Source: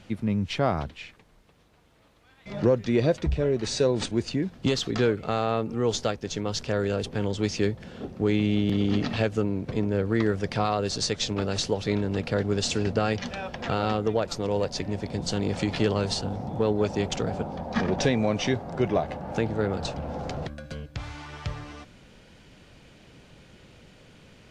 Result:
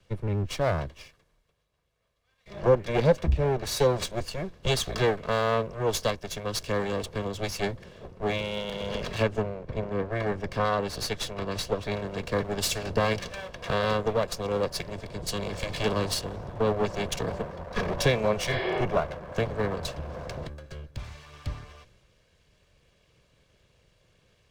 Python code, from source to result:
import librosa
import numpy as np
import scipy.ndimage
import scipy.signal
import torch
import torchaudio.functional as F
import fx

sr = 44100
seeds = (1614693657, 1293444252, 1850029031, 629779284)

y = fx.lower_of_two(x, sr, delay_ms=1.8)
y = fx.high_shelf(y, sr, hz=4100.0, db=-7.5, at=(9.23, 11.92))
y = fx.spec_repair(y, sr, seeds[0], start_s=18.54, length_s=0.25, low_hz=270.0, high_hz=5300.0, source='both')
y = fx.band_widen(y, sr, depth_pct=40)